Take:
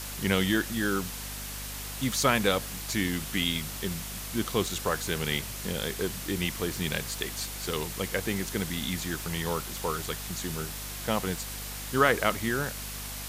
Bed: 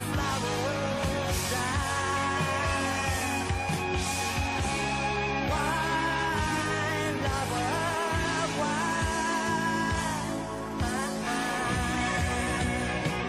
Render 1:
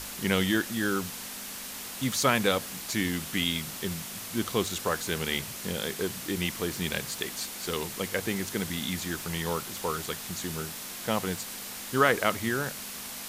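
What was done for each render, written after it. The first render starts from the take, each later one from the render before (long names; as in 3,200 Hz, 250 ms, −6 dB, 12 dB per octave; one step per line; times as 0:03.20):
mains-hum notches 50/100/150 Hz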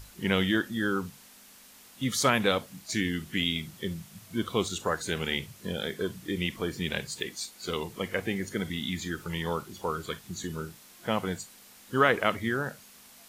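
noise reduction from a noise print 14 dB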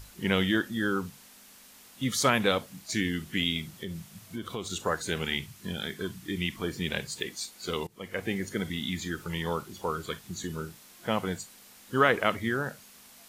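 0:03.77–0:04.71: downward compressor 4 to 1, threshold −32 dBFS
0:05.26–0:06.64: parametric band 510 Hz −10.5 dB 0.6 octaves
0:07.87–0:08.31: fade in, from −22.5 dB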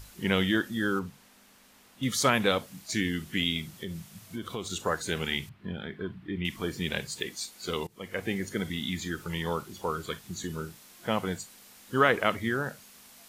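0:00.99–0:02.03: high-shelf EQ 3,500 Hz −9 dB
0:05.49–0:06.45: high-frequency loss of the air 470 metres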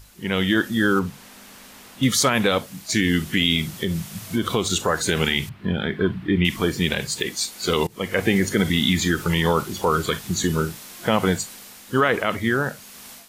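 automatic gain control gain up to 15 dB
brickwall limiter −8 dBFS, peak gain reduction 7 dB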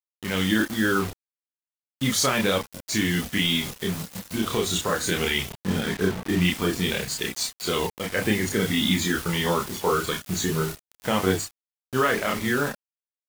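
bit reduction 5 bits
multi-voice chorus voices 4, 0.21 Hz, delay 30 ms, depth 2.6 ms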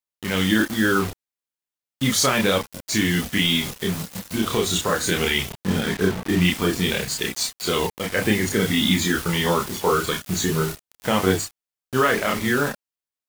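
level +3 dB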